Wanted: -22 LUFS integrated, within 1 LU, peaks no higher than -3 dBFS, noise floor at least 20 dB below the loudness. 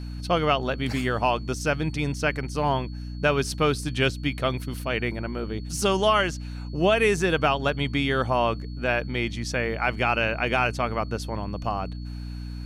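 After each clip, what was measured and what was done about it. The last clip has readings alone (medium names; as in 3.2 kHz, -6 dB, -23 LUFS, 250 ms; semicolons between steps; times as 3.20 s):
hum 60 Hz; highest harmonic 300 Hz; hum level -32 dBFS; steady tone 4.4 kHz; tone level -51 dBFS; loudness -25.5 LUFS; peak level -9.0 dBFS; loudness target -22.0 LUFS
-> hum notches 60/120/180/240/300 Hz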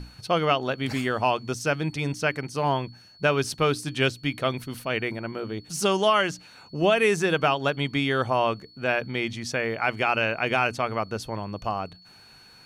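hum not found; steady tone 4.4 kHz; tone level -51 dBFS
-> band-stop 4.4 kHz, Q 30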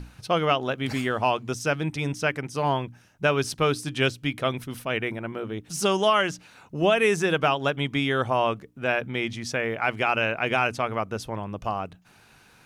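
steady tone not found; loudness -25.5 LUFS; peak level -9.5 dBFS; loudness target -22.0 LUFS
-> trim +3.5 dB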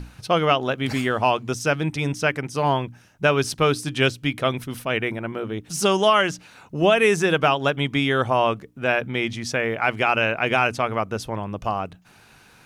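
loudness -22.0 LUFS; peak level -6.0 dBFS; noise floor -52 dBFS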